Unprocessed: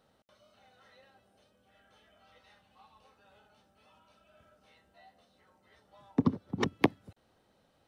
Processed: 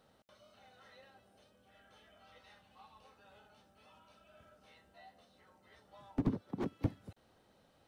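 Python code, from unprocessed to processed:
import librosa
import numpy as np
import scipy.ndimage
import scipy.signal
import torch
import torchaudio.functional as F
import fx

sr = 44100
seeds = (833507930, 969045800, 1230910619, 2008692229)

y = fx.highpass(x, sr, hz=370.0, slope=6, at=(6.41, 6.85))
y = fx.slew_limit(y, sr, full_power_hz=10.0)
y = y * 10.0 ** (1.0 / 20.0)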